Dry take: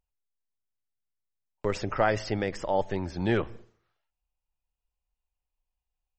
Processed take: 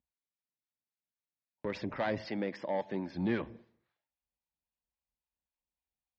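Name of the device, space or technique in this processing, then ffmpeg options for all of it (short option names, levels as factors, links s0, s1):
guitar amplifier with harmonic tremolo: -filter_complex "[0:a]asettb=1/sr,asplit=3[s0][s1][s2];[s0]atrim=end=2.244[s3];[s1]atrim=start=2.24:end=3.15,asetpts=PTS-STARTPTS,afade=t=in:d=0.004:c=qsin,afade=t=out:st=0.906:d=0.004:c=qsin,highpass=170[s4];[s2]atrim=start=3.146[s5];[s3][s4]acrossfade=d=0.004:c1=hsin:c2=qsin[s6];[s6][s5]acrossfade=d=0.004:c1=qsin:c2=hsin,highshelf=f=6400:g=-4,acrossover=split=750[s7][s8];[s7]aeval=exprs='val(0)*(1-0.5/2+0.5/2*cos(2*PI*3.7*n/s))':c=same[s9];[s8]aeval=exprs='val(0)*(1-0.5/2-0.5/2*cos(2*PI*3.7*n/s))':c=same[s10];[s9][s10]amix=inputs=2:normalize=0,asoftclip=type=tanh:threshold=0.075,highpass=89,equalizer=f=100:t=q:w=4:g=-9,equalizer=f=240:t=q:w=4:g=5,equalizer=f=420:t=q:w=4:g=-6,equalizer=f=740:t=q:w=4:g=-4,equalizer=f=1300:t=q:w=4:g=-10,equalizer=f=2900:t=q:w=4:g=-6,lowpass=f=4300:w=0.5412,lowpass=f=4300:w=1.3066"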